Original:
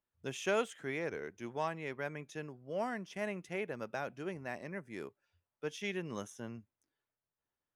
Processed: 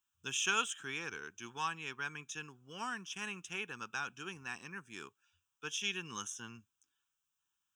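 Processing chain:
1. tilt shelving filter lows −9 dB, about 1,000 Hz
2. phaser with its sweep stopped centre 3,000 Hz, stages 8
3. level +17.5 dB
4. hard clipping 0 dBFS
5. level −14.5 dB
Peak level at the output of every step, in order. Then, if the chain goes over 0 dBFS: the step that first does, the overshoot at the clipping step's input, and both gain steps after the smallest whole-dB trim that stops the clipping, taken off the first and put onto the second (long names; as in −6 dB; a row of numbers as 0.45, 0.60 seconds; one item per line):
−18.0, −21.5, −4.0, −4.0, −18.5 dBFS
no step passes full scale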